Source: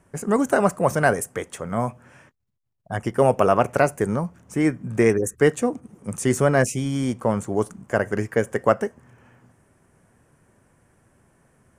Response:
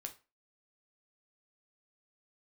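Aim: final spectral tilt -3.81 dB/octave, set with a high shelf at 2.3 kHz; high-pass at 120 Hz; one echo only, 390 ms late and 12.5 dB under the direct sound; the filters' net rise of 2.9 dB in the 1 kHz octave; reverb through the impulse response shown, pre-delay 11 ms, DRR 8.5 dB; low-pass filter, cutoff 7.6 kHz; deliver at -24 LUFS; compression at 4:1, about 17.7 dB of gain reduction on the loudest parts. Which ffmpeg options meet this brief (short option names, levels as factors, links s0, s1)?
-filter_complex "[0:a]highpass=120,lowpass=7600,equalizer=f=1000:t=o:g=5.5,highshelf=f=2300:g=-7.5,acompressor=threshold=0.0224:ratio=4,aecho=1:1:390:0.237,asplit=2[s0][s1];[1:a]atrim=start_sample=2205,adelay=11[s2];[s1][s2]afir=irnorm=-1:irlink=0,volume=0.562[s3];[s0][s3]amix=inputs=2:normalize=0,volume=3.76"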